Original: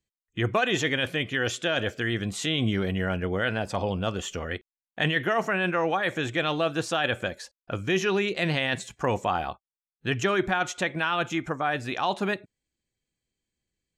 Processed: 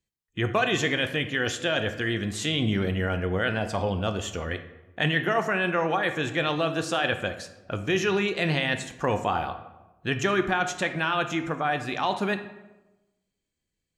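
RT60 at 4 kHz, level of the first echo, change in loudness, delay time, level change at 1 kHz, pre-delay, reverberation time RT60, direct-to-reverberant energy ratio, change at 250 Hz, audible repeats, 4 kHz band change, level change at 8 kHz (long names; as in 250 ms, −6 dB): 0.65 s, no echo audible, +0.5 dB, no echo audible, +1.0 dB, 11 ms, 1.1 s, 8.5 dB, +0.5 dB, no echo audible, +0.5 dB, +0.5 dB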